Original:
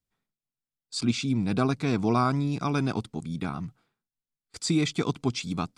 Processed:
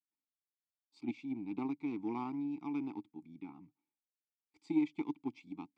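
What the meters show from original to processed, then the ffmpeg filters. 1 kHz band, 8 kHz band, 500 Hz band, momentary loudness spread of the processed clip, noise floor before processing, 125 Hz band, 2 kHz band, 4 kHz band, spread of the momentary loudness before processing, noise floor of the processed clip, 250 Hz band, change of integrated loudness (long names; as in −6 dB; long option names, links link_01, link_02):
−16.0 dB, below −35 dB, −16.0 dB, 16 LU, below −85 dBFS, −25.0 dB, −17.5 dB, below −25 dB, 10 LU, below −85 dBFS, −9.5 dB, −11.5 dB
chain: -filter_complex "[0:a]aeval=exprs='0.237*(cos(1*acos(clip(val(0)/0.237,-1,1)))-cos(1*PI/2))+0.0473*(cos(3*acos(clip(val(0)/0.237,-1,1)))-cos(3*PI/2))+0.00422*(cos(5*acos(clip(val(0)/0.237,-1,1)))-cos(5*PI/2))+0.00473*(cos(7*acos(clip(val(0)/0.237,-1,1)))-cos(7*PI/2))':channel_layout=same,asplit=3[link_01][link_02][link_03];[link_01]bandpass=frequency=300:width_type=q:width=8,volume=0dB[link_04];[link_02]bandpass=frequency=870:width_type=q:width=8,volume=-6dB[link_05];[link_03]bandpass=frequency=2240:width_type=q:width=8,volume=-9dB[link_06];[link_04][link_05][link_06]amix=inputs=3:normalize=0,volume=1dB"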